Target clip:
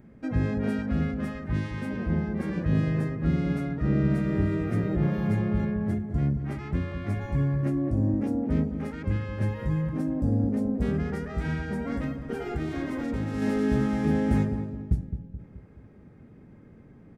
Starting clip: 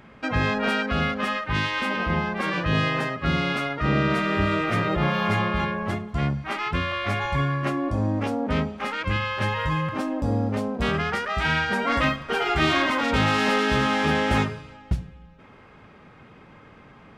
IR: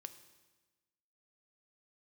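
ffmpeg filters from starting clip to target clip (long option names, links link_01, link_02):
-filter_complex "[0:a]firequalizer=gain_entry='entry(280,0);entry(540,-8);entry(1100,-19);entry(1800,-13);entry(2900,-22);entry(5800,-13);entry(9700,-7)':delay=0.05:min_phase=1,asettb=1/sr,asplit=3[link_01][link_02][link_03];[link_01]atrim=end=11.544[link_04];[link_02]atrim=start=11.54:end=13.42,asetpts=PTS-STARTPTS,afade=type=in:duration=0.004:curve=qsin,afade=type=out:start_time=1.876:duration=0.004:curve=qsin,acompressor=threshold=-27dB:ratio=6[link_05];[link_03]atrim=start=13.416[link_06];[link_04][link_05]acrossfade=duration=0.004:curve1=hsin:curve2=qsin[link_07];[link_07][link_06]acrossfade=duration=0.004:curve1=qsin:curve2=hsin,asplit=2[link_08][link_09];[link_09]adelay=214,lowpass=frequency=1100:poles=1,volume=-8dB,asplit=2[link_10][link_11];[link_11]adelay=214,lowpass=frequency=1100:poles=1,volume=0.48,asplit=2[link_12][link_13];[link_13]adelay=214,lowpass=frequency=1100:poles=1,volume=0.48,asplit=2[link_14][link_15];[link_15]adelay=214,lowpass=frequency=1100:poles=1,volume=0.48,asplit=2[link_16][link_17];[link_17]adelay=214,lowpass=frequency=1100:poles=1,volume=0.48,asplit=2[link_18][link_19];[link_19]adelay=214,lowpass=frequency=1100:poles=1,volume=0.48[link_20];[link_08][link_10][link_12][link_14][link_16][link_18][link_20]amix=inputs=7:normalize=0"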